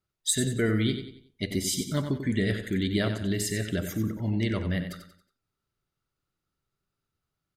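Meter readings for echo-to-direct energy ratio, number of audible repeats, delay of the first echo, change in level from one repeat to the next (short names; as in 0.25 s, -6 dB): -8.5 dB, 4, 92 ms, -8.5 dB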